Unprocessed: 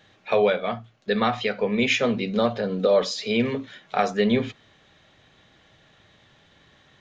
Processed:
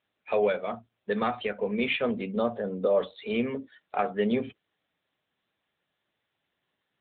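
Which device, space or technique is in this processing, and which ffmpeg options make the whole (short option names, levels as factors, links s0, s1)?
mobile call with aggressive noise cancelling: -filter_complex "[0:a]asplit=3[s0][s1][s2];[s0]afade=t=out:st=2.42:d=0.02[s3];[s1]lowpass=5800,afade=t=in:st=2.42:d=0.02,afade=t=out:st=3.06:d=0.02[s4];[s2]afade=t=in:st=3.06:d=0.02[s5];[s3][s4][s5]amix=inputs=3:normalize=0,highpass=160,afftdn=nr=17:nf=-37,volume=0.596" -ar 8000 -c:a libopencore_amrnb -b:a 10200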